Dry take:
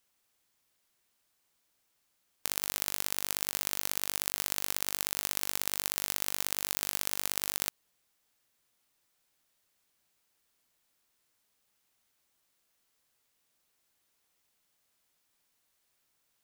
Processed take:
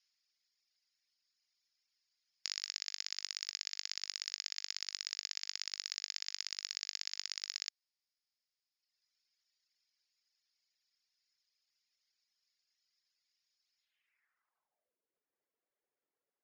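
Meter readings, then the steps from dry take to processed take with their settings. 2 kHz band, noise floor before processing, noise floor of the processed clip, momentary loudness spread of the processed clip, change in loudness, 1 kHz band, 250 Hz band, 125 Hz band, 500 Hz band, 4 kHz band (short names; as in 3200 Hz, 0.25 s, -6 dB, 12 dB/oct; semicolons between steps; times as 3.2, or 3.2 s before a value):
-8.5 dB, -76 dBFS, under -85 dBFS, 1 LU, -8.0 dB, -19.0 dB, under -30 dB, under -40 dB, under -25 dB, -0.5 dB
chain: band-pass sweep 4600 Hz -> 450 Hz, 13.76–14.99; reverb removal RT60 1.7 s; rippled Chebyshev low-pass 7000 Hz, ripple 9 dB; gain +9.5 dB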